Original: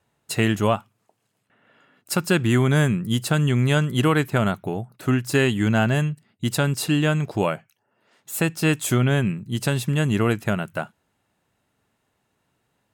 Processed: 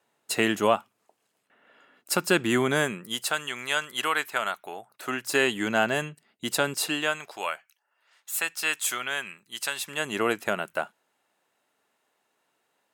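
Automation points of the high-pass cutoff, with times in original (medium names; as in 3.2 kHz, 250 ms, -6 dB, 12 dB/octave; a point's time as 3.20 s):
2.64 s 300 Hz
3.45 s 920 Hz
4.62 s 920 Hz
5.57 s 380 Hz
6.74 s 380 Hz
7.35 s 1.1 kHz
9.75 s 1.1 kHz
10.21 s 410 Hz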